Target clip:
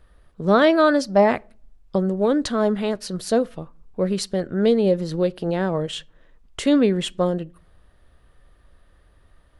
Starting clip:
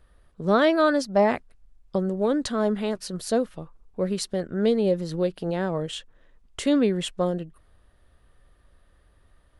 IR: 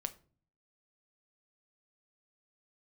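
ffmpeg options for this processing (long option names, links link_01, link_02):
-filter_complex "[0:a]asplit=2[link_01][link_02];[1:a]atrim=start_sample=2205,lowpass=7200[link_03];[link_02][link_03]afir=irnorm=-1:irlink=0,volume=-9dB[link_04];[link_01][link_04]amix=inputs=2:normalize=0,volume=1.5dB"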